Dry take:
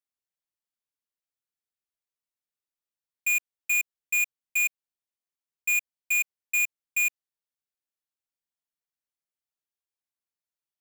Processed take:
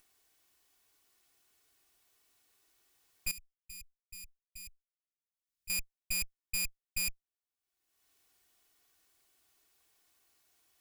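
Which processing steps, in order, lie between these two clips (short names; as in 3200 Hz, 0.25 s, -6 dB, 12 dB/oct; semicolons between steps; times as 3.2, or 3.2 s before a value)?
minimum comb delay 2.7 ms; upward compressor, threshold -45 dBFS; 3.31–5.7 passive tone stack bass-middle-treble 6-0-2; gain -4.5 dB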